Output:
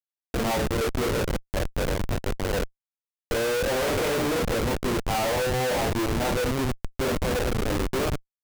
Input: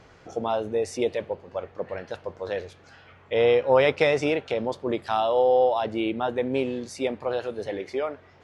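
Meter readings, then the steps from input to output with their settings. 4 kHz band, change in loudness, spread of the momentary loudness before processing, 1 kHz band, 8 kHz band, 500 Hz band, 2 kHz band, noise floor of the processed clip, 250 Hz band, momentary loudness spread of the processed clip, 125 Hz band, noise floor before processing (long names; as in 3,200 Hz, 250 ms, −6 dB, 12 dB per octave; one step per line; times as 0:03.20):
+4.5 dB, −1.0 dB, 14 LU, −1.5 dB, can't be measured, −3.5 dB, +2.0 dB, below −85 dBFS, +2.5 dB, 5 LU, +10.0 dB, −54 dBFS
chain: every bin's largest magnitude spread in time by 60 ms
chorus effect 0.83 Hz, delay 20 ms, depth 3.3 ms
high-shelf EQ 2,100 Hz −2.5 dB
ambience of single reflections 52 ms −11.5 dB, 62 ms −10 dB
comparator with hysteresis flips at −27 dBFS
level +1.5 dB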